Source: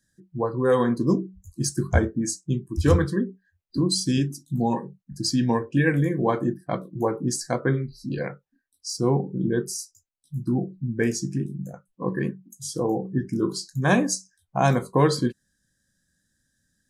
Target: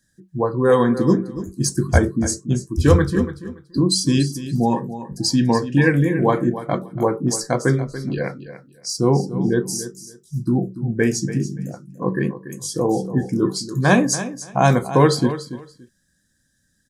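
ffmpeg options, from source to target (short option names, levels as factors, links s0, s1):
-af "aecho=1:1:286|572:0.224|0.0425,volume=1.78"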